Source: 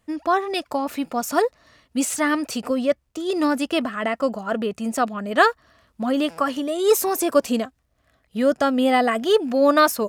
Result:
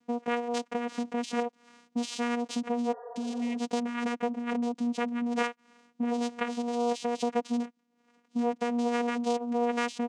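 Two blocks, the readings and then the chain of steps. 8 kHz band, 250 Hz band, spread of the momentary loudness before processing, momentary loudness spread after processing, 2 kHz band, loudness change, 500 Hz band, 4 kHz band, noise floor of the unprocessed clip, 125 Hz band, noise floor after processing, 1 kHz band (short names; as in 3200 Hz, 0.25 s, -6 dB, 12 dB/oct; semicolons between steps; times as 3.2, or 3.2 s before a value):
-14.0 dB, -6.5 dB, 8 LU, 5 LU, -12.0 dB, -9.5 dB, -11.5 dB, -11.0 dB, -67 dBFS, n/a, -72 dBFS, -10.0 dB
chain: dynamic EQ 790 Hz, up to -5 dB, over -32 dBFS, Q 1.1; comb 5.5 ms, depth 42%; vocoder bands 4, saw 239 Hz; high shelf 3600 Hz +8.5 dB; compressor 2.5:1, threshold -30 dBFS, peak gain reduction 11.5 dB; spectral repair 2.95–3.55, 430–1900 Hz after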